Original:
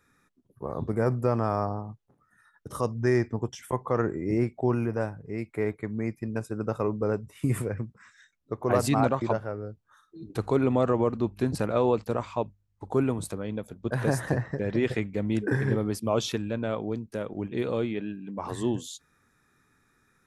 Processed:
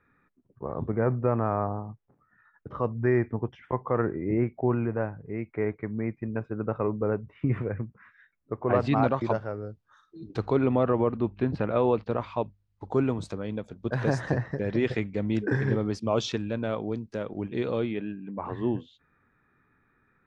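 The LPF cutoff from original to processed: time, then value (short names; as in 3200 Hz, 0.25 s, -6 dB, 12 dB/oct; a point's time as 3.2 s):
LPF 24 dB/oct
8.58 s 2500 Hz
9.27 s 5900 Hz
10.34 s 5900 Hz
10.75 s 3300 Hz
11.67 s 3300 Hz
13.03 s 6100 Hz
17.67 s 6100 Hz
18.2 s 2500 Hz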